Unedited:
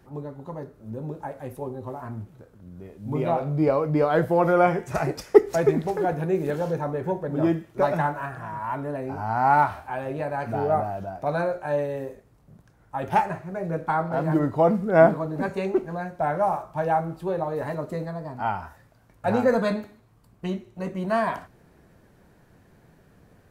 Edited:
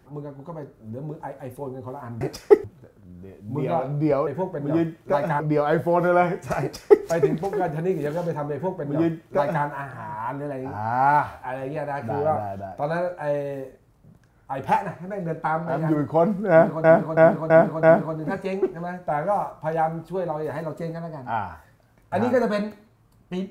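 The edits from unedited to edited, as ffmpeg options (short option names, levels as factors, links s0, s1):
-filter_complex "[0:a]asplit=9[s0][s1][s2][s3][s4][s5][s6][s7][s8];[s0]atrim=end=2.212[s9];[s1]atrim=start=5.048:end=5.482[s10];[s2]atrim=start=2.208:end=3.842[s11];[s3]atrim=start=6.958:end=8.092[s12];[s4]atrim=start=3.838:end=15.282[s13];[s5]atrim=start=14.948:end=15.282[s14];[s6]atrim=start=14.948:end=15.282[s15];[s7]atrim=start=14.948:end=15.282[s16];[s8]atrim=start=14.948[s17];[s9][s10]acrossfade=d=0.004:c1=hsin:c2=hsin[s18];[s18][s11]acrossfade=d=0.004:c1=hsin:c2=hsin[s19];[s19][s12]acrossfade=d=0.004:c1=hsin:c2=hsin[s20];[s20][s13]acrossfade=d=0.004:c1=hsin:c2=hsin[s21];[s21][s14]acrossfade=d=0.004:c1=hsin:c2=hsin[s22];[s22][s15]acrossfade=d=0.004:c1=hsin:c2=hsin[s23];[s23][s16]acrossfade=d=0.004:c1=hsin:c2=hsin[s24];[s24][s17]acrossfade=d=0.004:c1=hsin:c2=hsin"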